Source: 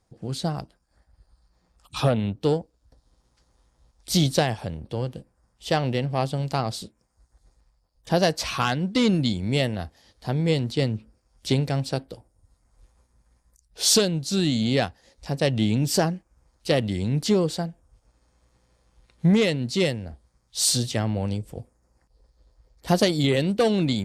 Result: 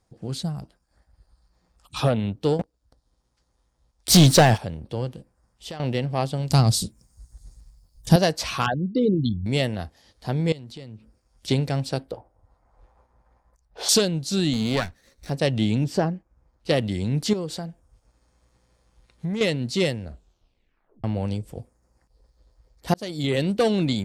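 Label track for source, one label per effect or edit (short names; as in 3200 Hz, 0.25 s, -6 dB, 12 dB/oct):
0.420000	0.620000	spectral gain 220–6900 Hz -10 dB
2.590000	4.580000	sample leveller passes 3
5.090000	5.800000	compressor 5:1, threshold -33 dBFS
6.500000	8.160000	tone controls bass +14 dB, treble +14 dB
8.660000	9.460000	formant sharpening exponent 3
10.520000	11.480000	compressor 4:1, threshold -39 dBFS
12.110000	13.890000	EQ curve 230 Hz 0 dB, 810 Hz +12 dB, 8700 Hz -15 dB
14.530000	15.300000	minimum comb delay 0.51 ms
15.840000	16.690000	LPF 1400 Hz 6 dB/oct
17.330000	19.410000	compressor 2.5:1, threshold -29 dBFS
20.030000	20.030000	tape stop 1.01 s
22.940000	23.420000	fade in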